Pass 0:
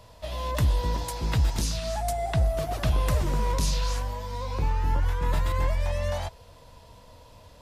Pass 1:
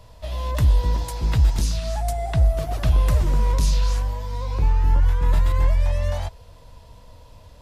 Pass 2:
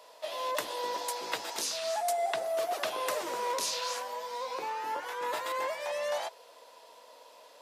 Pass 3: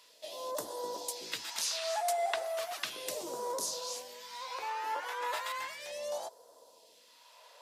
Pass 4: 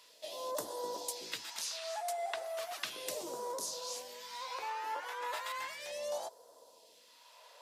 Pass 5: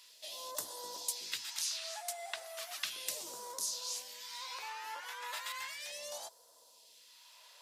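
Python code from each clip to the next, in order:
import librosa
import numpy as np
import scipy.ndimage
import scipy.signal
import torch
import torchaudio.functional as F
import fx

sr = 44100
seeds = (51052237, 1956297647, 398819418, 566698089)

y1 = fx.low_shelf(x, sr, hz=90.0, db=10.0)
y2 = scipy.signal.sosfilt(scipy.signal.butter(4, 410.0, 'highpass', fs=sr, output='sos'), y1)
y3 = fx.phaser_stages(y2, sr, stages=2, low_hz=150.0, high_hz=2300.0, hz=0.35, feedback_pct=30)
y3 = y3 * 10.0 ** (-1.0 / 20.0)
y4 = fx.rider(y3, sr, range_db=3, speed_s=0.5)
y4 = y4 * 10.0 ** (-3.0 / 20.0)
y5 = fx.tone_stack(y4, sr, knobs='5-5-5')
y5 = y5 * 10.0 ** (9.5 / 20.0)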